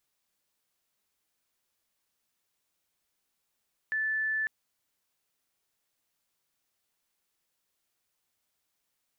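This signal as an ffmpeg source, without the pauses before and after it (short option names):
-f lavfi -i "sine=f=1750:d=0.55:r=44100,volume=-8.94dB"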